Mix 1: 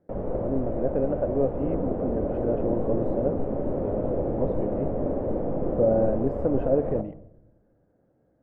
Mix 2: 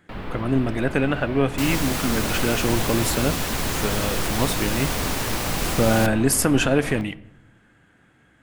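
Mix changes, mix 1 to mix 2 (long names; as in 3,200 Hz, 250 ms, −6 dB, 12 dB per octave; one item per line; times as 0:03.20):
speech +9.5 dB
second sound: remove resonant band-pass 280 Hz, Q 1.5
master: remove low-pass with resonance 560 Hz, resonance Q 3.8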